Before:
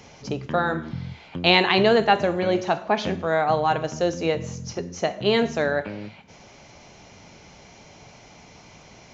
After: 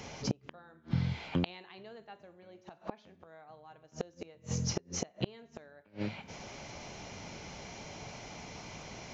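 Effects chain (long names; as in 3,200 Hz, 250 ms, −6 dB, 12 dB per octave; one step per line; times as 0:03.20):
gate with flip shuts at −20 dBFS, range −34 dB
level +1.5 dB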